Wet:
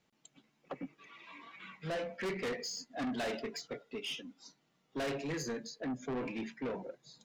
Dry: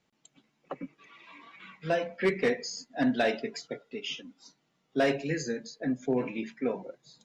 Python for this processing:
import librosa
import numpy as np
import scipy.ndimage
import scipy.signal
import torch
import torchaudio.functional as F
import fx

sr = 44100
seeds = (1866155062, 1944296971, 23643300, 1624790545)

y = 10.0 ** (-32.5 / 20.0) * np.tanh(x / 10.0 ** (-32.5 / 20.0))
y = F.gain(torch.from_numpy(y), -1.0).numpy()